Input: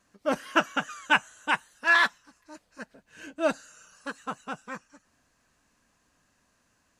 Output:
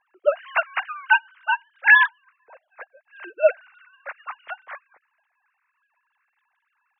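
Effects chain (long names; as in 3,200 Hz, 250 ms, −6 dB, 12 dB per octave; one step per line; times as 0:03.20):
three sine waves on the formant tracks
level +6 dB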